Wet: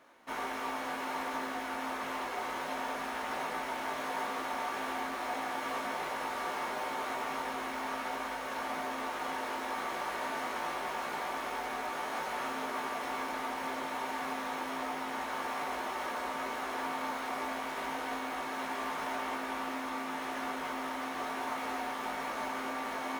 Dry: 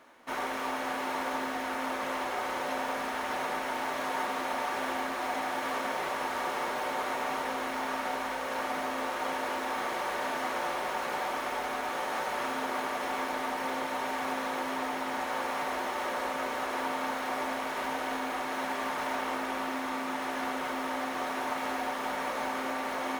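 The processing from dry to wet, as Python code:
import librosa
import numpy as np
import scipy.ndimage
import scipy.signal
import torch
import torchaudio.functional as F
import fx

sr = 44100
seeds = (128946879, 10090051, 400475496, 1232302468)

y = fx.doubler(x, sr, ms=18.0, db=-5.5)
y = y * librosa.db_to_amplitude(-4.5)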